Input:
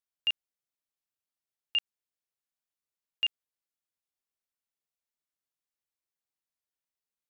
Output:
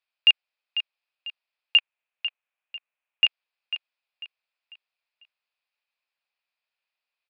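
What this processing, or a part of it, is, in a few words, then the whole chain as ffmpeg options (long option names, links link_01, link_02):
musical greeting card: -filter_complex "[0:a]asplit=3[link_01][link_02][link_03];[link_01]afade=type=out:start_time=1.77:duration=0.02[link_04];[link_02]lowpass=frequency=3000:width=0.5412,lowpass=frequency=3000:width=1.3066,afade=type=in:start_time=1.77:duration=0.02,afade=type=out:start_time=3.25:duration=0.02[link_05];[link_03]afade=type=in:start_time=3.25:duration=0.02[link_06];[link_04][link_05][link_06]amix=inputs=3:normalize=0,aresample=11025,aresample=44100,highpass=frequency=550:width=0.5412,highpass=frequency=550:width=1.3066,equalizer=frequency=2500:width_type=o:width=0.23:gain=11.5,aecho=1:1:496|992|1488|1984:0.282|0.101|0.0365|0.0131,volume=8dB"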